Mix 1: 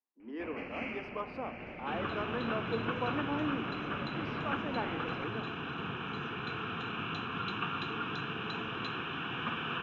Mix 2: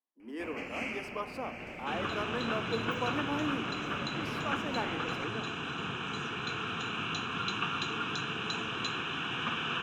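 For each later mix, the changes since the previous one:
master: remove high-frequency loss of the air 280 metres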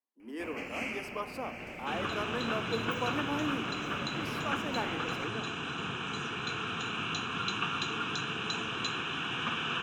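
master: add high-shelf EQ 8,900 Hz +9 dB

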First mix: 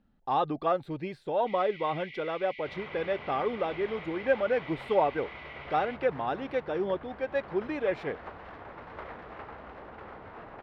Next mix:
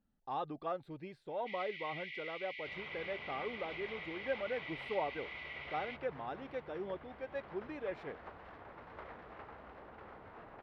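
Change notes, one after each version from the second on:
speech −11.5 dB
second sound −7.5 dB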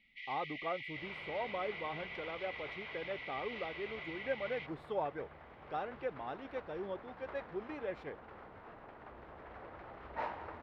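first sound: entry −1.30 s
second sound: entry −1.70 s

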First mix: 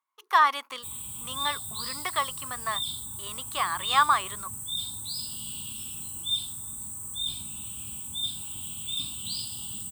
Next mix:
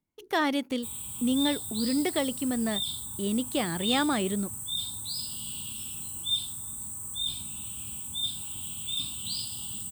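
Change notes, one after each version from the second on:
speech: remove high-pass with resonance 1,100 Hz, resonance Q 8.9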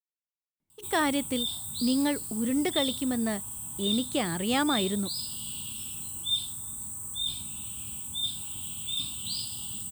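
speech: entry +0.60 s

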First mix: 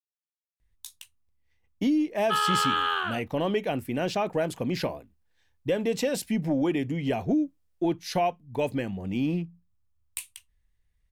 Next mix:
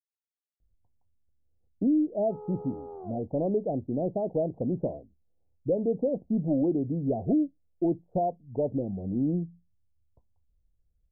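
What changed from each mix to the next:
master: add Butterworth low-pass 710 Hz 48 dB per octave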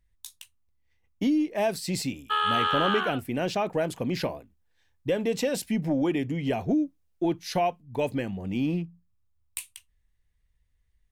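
speech: entry −0.60 s
master: remove Butterworth low-pass 710 Hz 48 dB per octave

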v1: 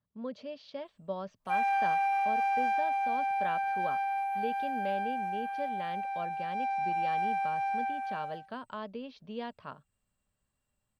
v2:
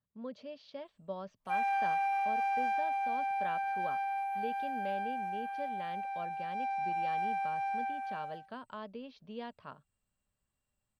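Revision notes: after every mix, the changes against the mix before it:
speech −4.0 dB
background −3.0 dB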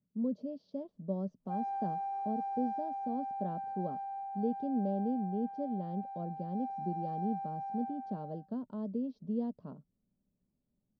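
background: add high-shelf EQ 3,000 Hz −9.5 dB
master: add drawn EQ curve 100 Hz 0 dB, 180 Hz +13 dB, 270 Hz +12 dB, 590 Hz +1 dB, 2,300 Hz −26 dB, 5,400 Hz −8 dB, 8,700 Hz −15 dB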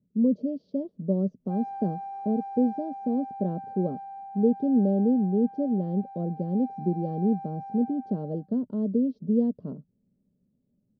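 speech: add low shelf with overshoot 630 Hz +10 dB, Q 1.5

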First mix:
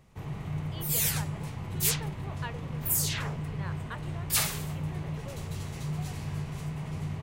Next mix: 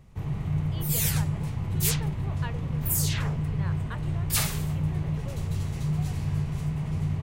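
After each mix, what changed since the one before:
master: add low-shelf EQ 180 Hz +10.5 dB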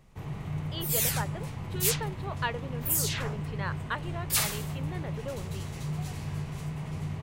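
speech +8.5 dB
master: add low-shelf EQ 180 Hz −10.5 dB

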